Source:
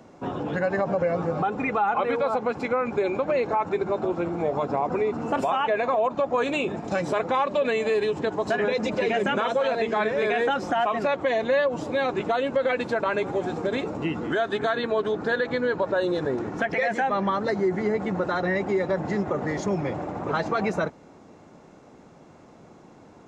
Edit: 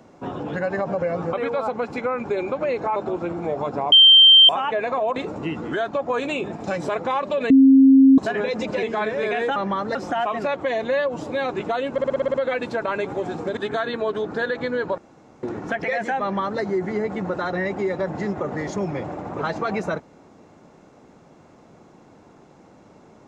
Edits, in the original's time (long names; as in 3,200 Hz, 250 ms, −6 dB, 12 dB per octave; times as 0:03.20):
0:01.33–0:02.00: remove
0:03.63–0:03.92: remove
0:04.88–0:05.45: beep over 3,140 Hz −7 dBFS
0:07.74–0:08.42: beep over 268 Hz −8 dBFS
0:09.07–0:09.82: remove
0:12.52: stutter 0.06 s, 8 plays
0:13.75–0:14.47: move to 0:06.12
0:15.88–0:16.33: fill with room tone
0:17.12–0:17.51: duplicate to 0:10.55